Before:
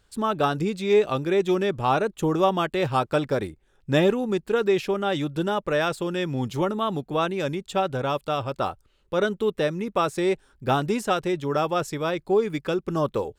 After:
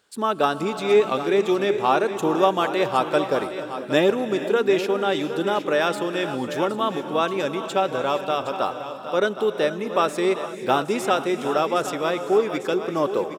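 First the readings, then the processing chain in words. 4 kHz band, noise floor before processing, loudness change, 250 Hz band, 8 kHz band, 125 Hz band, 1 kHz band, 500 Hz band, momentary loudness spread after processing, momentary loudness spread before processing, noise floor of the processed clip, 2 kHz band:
+3.0 dB, −65 dBFS, +2.0 dB, +0.5 dB, +3.0 dB, −6.5 dB, +3.0 dB, +2.5 dB, 6 LU, 6 LU, −34 dBFS, +3.0 dB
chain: high-pass filter 260 Hz 12 dB per octave
on a send: single-tap delay 765 ms −11.5 dB
on the sum: reverb whose tail is shaped and stops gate 500 ms rising, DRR 10 dB
level +2.5 dB

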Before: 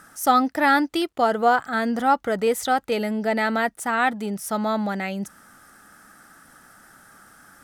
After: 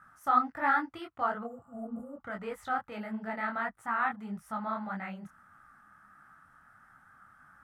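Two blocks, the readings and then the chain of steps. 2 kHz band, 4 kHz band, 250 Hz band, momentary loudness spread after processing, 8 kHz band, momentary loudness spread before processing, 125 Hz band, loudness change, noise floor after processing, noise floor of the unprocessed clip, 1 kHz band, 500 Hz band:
−10.5 dB, −21.0 dB, −14.0 dB, 14 LU, below −25 dB, 8 LU, −11.5 dB, −11.0 dB, −62 dBFS, −53 dBFS, −10.0 dB, −17.0 dB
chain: drawn EQ curve 120 Hz 0 dB, 430 Hz −12 dB, 1,200 Hz +6 dB, 5,000 Hz −16 dB
healed spectral selection 0:01.46–0:02.14, 710–7,100 Hz after
parametric band 120 Hz +4.5 dB 2.2 octaves
micro pitch shift up and down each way 55 cents
level −6.5 dB

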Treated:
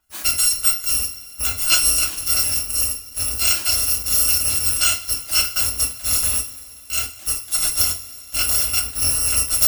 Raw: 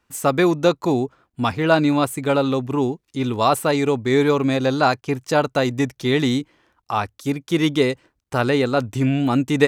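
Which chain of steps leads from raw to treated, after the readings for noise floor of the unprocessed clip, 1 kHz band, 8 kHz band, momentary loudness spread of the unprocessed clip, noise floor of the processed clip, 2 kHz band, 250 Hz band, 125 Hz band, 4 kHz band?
−74 dBFS, −12.5 dB, +20.0 dB, 8 LU, −40 dBFS, −2.5 dB, −24.0 dB, −11.5 dB, +8.0 dB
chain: samples in bit-reversed order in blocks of 256 samples
coupled-rooms reverb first 0.27 s, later 3.1 s, from −22 dB, DRR 0 dB
level −3.5 dB

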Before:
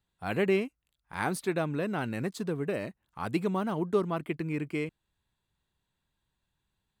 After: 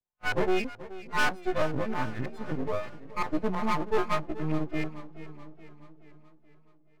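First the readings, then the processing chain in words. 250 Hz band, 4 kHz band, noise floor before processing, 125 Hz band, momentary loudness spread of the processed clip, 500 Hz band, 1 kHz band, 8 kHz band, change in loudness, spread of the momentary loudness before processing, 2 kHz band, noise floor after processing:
−1.0 dB, +5.5 dB, −83 dBFS, −1.0 dB, 16 LU, −0.5 dB, +5.0 dB, −1.5 dB, +0.5 dB, 9 LU, +4.5 dB, −59 dBFS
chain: every partial snapped to a pitch grid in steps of 3 semitones
noise reduction from a noise print of the clip's start 16 dB
in parallel at −2 dB: downward compressor, threshold −36 dBFS, peak gain reduction 13 dB
on the sum: auto-filter low-pass saw up 3.1 Hz 560–2,300 Hz
soft clipping −20.5 dBFS, distortion −15 dB
noise gate −49 dBFS, range −8 dB
half-wave rectification
delay with a low-pass on its return 683 ms, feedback 38%, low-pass 440 Hz, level −22 dB
feedback echo with a swinging delay time 427 ms, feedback 54%, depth 60 cents, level −16 dB
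level +5.5 dB

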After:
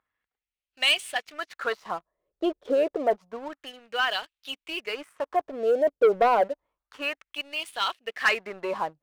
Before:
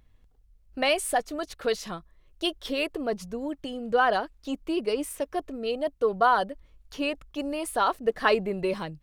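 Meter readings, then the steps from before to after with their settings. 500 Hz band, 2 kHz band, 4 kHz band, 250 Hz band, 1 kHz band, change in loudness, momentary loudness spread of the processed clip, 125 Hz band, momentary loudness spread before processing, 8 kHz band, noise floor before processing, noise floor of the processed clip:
+1.5 dB, +2.5 dB, +4.5 dB, −5.0 dB, −1.0 dB, +1.0 dB, 15 LU, below −10 dB, 12 LU, can't be measured, −61 dBFS, below −85 dBFS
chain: auto-filter band-pass sine 0.29 Hz 480–3,100 Hz
leveller curve on the samples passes 2
level +3.5 dB

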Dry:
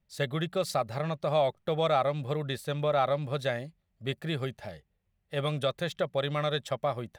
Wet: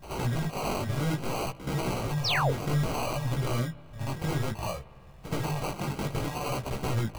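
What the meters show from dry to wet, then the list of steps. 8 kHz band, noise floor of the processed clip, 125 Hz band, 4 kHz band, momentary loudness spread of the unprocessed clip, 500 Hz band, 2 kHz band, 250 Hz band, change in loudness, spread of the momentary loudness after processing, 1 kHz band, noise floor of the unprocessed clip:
+7.5 dB, −49 dBFS, +5.0 dB, +0.5 dB, 10 LU, −5.5 dB, +2.0 dB, +4.0 dB, −0.5 dB, 9 LU, −1.0 dB, −76 dBFS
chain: high-shelf EQ 7,900 Hz +5.5 dB
sine wavefolder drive 19 dB, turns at −13.5 dBFS
downward compressor 5 to 1, threshold −32 dBFS, peak gain reduction 14.5 dB
all-pass phaser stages 4, 1.2 Hz, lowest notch 270–1,500 Hz
decimation without filtering 25×
on a send: backwards echo 75 ms −10.5 dB
on the sum: spring reverb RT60 3 s, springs 56 ms, chirp 50 ms, DRR 18.5 dB
sound drawn into the spectrogram fall, 0:02.24–0:02.51, 390–6,100 Hz −30 dBFS
chorus effect 0.6 Hz, delay 15 ms, depth 6.3 ms
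level +5.5 dB

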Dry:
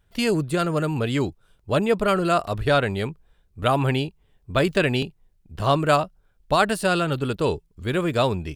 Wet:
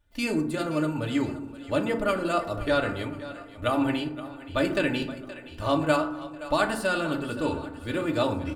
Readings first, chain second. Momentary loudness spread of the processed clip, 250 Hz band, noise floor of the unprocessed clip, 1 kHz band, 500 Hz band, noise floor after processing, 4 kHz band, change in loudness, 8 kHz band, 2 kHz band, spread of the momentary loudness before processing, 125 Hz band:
10 LU, −1.5 dB, −63 dBFS, −5.5 dB, −5.0 dB, −44 dBFS, −5.5 dB, −4.5 dB, −5.5 dB, −3.5 dB, 7 LU, −9.0 dB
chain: comb filter 3.4 ms, depth 52%
on a send: echo with a time of its own for lows and highs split 460 Hz, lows 220 ms, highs 522 ms, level −15 dB
on the sum: feedback delay network reverb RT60 0.76 s, low-frequency decay 1.4×, high-frequency decay 0.4×, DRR 3.5 dB
level −7.5 dB

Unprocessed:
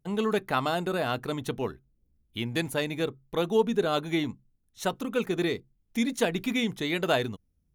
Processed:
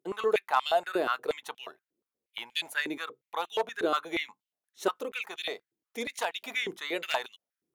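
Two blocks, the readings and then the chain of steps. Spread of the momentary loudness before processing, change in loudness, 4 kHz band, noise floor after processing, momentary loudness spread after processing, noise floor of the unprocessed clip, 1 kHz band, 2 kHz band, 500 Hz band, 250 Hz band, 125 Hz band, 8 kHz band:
10 LU, −3.0 dB, −1.0 dB, below −85 dBFS, 15 LU, −72 dBFS, +1.0 dB, 0.0 dB, −4.0 dB, −11.0 dB, −23.0 dB, −4.0 dB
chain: wave folding −16 dBFS
high-pass on a step sequencer 8.4 Hz 360–3,000 Hz
level −4.5 dB

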